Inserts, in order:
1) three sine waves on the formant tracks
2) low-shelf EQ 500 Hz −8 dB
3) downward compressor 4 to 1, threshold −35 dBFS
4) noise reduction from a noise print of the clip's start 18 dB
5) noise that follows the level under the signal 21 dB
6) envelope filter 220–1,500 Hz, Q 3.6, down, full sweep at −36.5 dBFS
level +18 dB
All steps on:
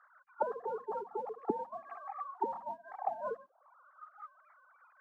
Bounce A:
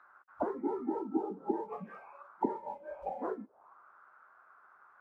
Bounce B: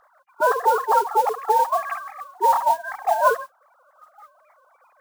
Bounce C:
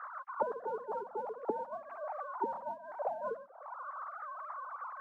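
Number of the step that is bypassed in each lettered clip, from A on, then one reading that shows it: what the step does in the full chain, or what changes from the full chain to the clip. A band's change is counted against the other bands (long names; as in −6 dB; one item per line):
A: 1, 250 Hz band +11.5 dB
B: 6, change in crest factor −5.0 dB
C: 4, 2 kHz band +4.5 dB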